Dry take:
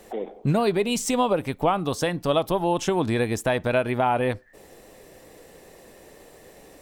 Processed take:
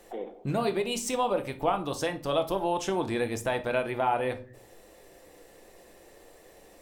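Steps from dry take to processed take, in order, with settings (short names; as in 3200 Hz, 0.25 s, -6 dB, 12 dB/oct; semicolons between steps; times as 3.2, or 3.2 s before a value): bell 160 Hz -8 dB 0.96 oct; shoebox room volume 330 m³, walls furnished, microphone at 0.81 m; gain -5.5 dB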